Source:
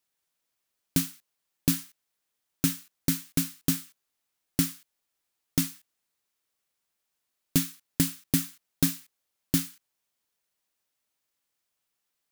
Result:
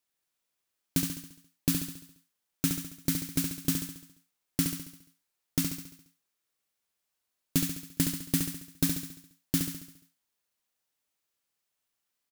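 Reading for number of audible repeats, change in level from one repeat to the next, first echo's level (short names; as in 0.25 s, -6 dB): 6, -5.5 dB, -5.5 dB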